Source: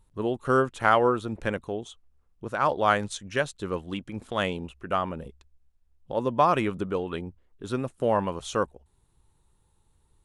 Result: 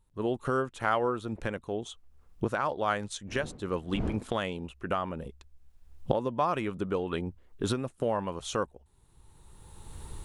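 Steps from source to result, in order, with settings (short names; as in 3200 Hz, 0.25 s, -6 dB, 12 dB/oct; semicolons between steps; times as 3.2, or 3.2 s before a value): 3.27–4.21 wind noise 270 Hz -34 dBFS; recorder AGC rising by 20 dB/s; gain -7 dB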